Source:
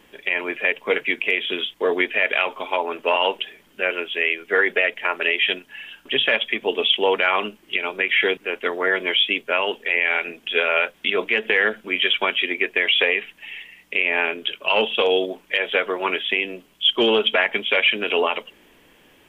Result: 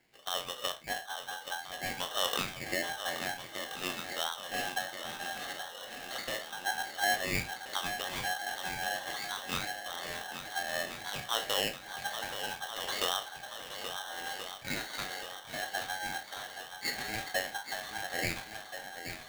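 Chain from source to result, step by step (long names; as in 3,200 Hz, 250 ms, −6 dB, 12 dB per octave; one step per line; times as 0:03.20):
peak hold with a decay on every bin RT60 0.31 s
auto-filter band-pass sine 0.55 Hz 320–1,800 Hz
on a send: feedback echo with a long and a short gap by turns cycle 1,379 ms, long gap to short 1.5 to 1, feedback 55%, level −9 dB
on the sum: ring modulator with a square carrier 1,200 Hz
level −8.5 dB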